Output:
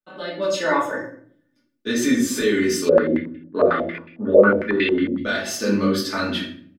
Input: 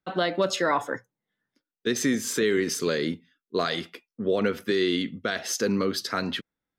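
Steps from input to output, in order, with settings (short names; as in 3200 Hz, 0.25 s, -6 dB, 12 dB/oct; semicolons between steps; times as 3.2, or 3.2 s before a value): de-esser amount 50%; comb 3.4 ms, depth 54%; AGC gain up to 11.5 dB; shoebox room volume 76 m³, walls mixed, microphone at 1.5 m; 2.89–5.18 stepped low-pass 11 Hz 530–2500 Hz; gain -13 dB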